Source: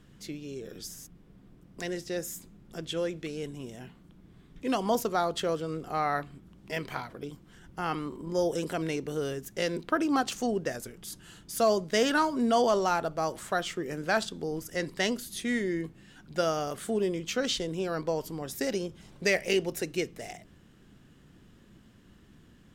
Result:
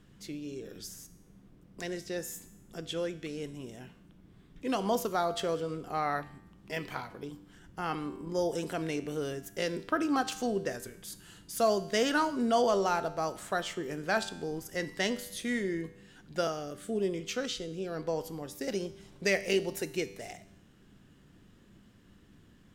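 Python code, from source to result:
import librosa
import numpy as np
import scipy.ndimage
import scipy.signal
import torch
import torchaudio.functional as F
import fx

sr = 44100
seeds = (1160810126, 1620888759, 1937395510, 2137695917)

y = fx.rotary(x, sr, hz=1.0, at=(16.47, 18.68))
y = fx.comb_fb(y, sr, f0_hz=98.0, decay_s=0.88, harmonics='all', damping=0.0, mix_pct=60)
y = y * 10.0 ** (4.5 / 20.0)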